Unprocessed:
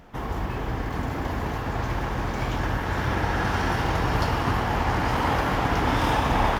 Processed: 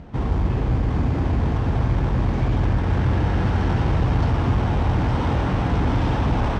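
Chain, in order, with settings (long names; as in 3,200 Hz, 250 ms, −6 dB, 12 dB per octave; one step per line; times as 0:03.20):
soft clipping −26 dBFS, distortion −9 dB
high-pass filter 46 Hz
low-shelf EQ 270 Hz +12 dB
in parallel at −6 dB: sample-rate reduction 2,300 Hz, jitter 0%
on the sum: high-frequency loss of the air 120 metres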